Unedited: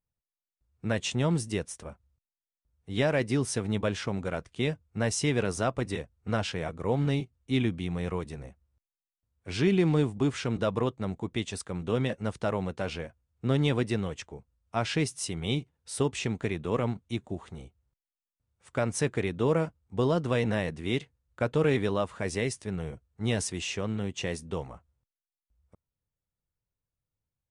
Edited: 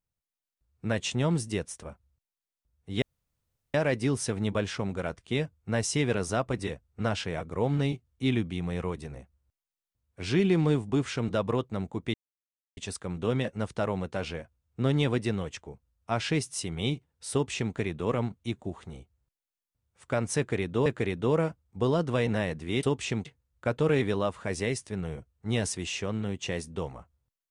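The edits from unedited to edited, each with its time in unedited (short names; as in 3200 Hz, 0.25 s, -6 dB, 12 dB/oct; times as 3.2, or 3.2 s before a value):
3.02 insert room tone 0.72 s
11.42 insert silence 0.63 s
15.97–16.39 copy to 21
19.03–19.51 loop, 2 plays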